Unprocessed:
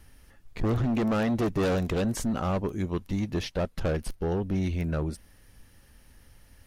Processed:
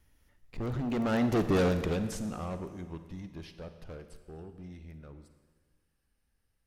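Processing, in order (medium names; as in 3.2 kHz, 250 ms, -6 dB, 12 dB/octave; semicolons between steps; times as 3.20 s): Doppler pass-by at 1.45 s, 19 m/s, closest 6.4 m; Schroeder reverb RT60 1.5 s, DRR 9.5 dB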